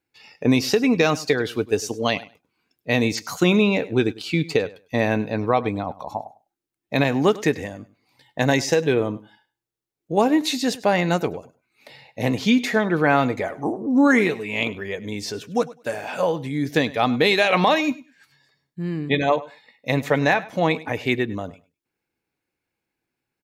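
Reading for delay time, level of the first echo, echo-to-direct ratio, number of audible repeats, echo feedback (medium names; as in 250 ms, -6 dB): 101 ms, -19.0 dB, -19.0 dB, 2, 16%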